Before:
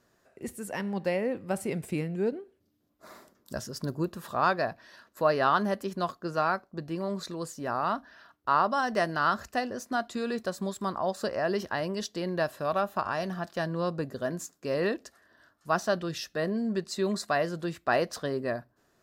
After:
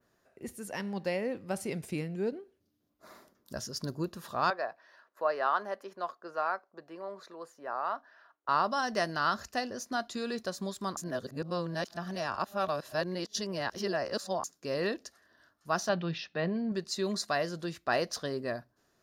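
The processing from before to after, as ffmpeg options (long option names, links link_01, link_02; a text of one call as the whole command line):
ffmpeg -i in.wav -filter_complex "[0:a]asettb=1/sr,asplit=3[link_01][link_02][link_03];[link_01]atrim=end=4.504[link_04];[link_02]atrim=start=4.5:end=8.49,asetpts=PTS-STARTPTS,afade=type=in:duration=0.004:curve=qsin,afade=type=out:start_time=3.986:duration=0.004:curve=qsin,acrossover=split=400 2100:gain=0.0708 1 0.2[link_05][link_06][link_07];[link_05][link_06][link_07]amix=inputs=3:normalize=0[link_08];[link_03]atrim=start=8.486[link_09];[link_04][link_08]acrossfade=duration=0.004:curve1=hsin:curve2=qsin[link_10];[link_10][link_09]acrossfade=duration=0.004:curve1=qsin:curve2=hsin,asettb=1/sr,asplit=3[link_11][link_12][link_13];[link_11]atrim=end=15.894[link_14];[link_12]atrim=start=15.89:end=16.72,asetpts=PTS-STARTPTS,afade=type=in:duration=0.004:curve=qsin,afade=type=out:start_time=0.826:duration=0.004:curve=qsin,highpass=110,equalizer=frequency=170:width_type=q:width=4:gain=8,equalizer=frequency=850:width_type=q:width=4:gain=7,equalizer=frequency=2400:width_type=q:width=4:gain=6,lowpass=frequency=3800:width=0.5412,lowpass=frequency=3800:width=1.3066[link_15];[link_13]atrim=start=16.716[link_16];[link_14][link_15]acrossfade=duration=0.004:curve1=hsin:curve2=qsin[link_17];[link_17][link_16]acrossfade=duration=0.004:curve1=qsin:curve2=hsin,asplit=3[link_18][link_19][link_20];[link_18]atrim=end=10.972[link_21];[link_19]atrim=start=10.968:end=14.442,asetpts=PTS-STARTPTS,areverse[link_22];[link_20]atrim=start=14.438[link_23];[link_21][link_22]acrossfade=duration=0.004:curve1=hsin:curve2=hsin[link_24];[link_24][link_23]acrossfade=duration=0.004:curve1=hsin:curve2=hsin,adynamicequalizer=threshold=0.00282:dfrequency=5600:dqfactor=0.8:tfrequency=5600:tqfactor=0.8:attack=5:release=100:ratio=0.375:range=4:mode=boostabove:tftype=bell,bandreject=frequency=7800:width=7.9,volume=-4dB" out.wav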